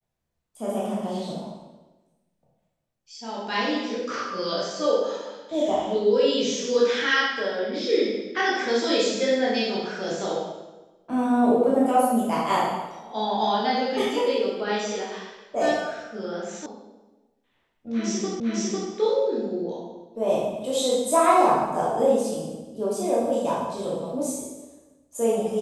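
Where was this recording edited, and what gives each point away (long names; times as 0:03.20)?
0:16.66: cut off before it has died away
0:18.40: the same again, the last 0.5 s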